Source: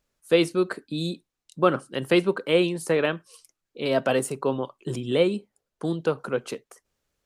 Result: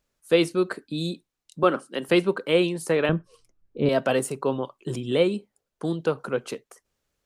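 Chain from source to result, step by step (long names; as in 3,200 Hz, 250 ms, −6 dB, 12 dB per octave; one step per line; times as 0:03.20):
0:01.63–0:02.09: high-pass filter 190 Hz 24 dB per octave
0:03.09–0:03.89: spectral tilt −4.5 dB per octave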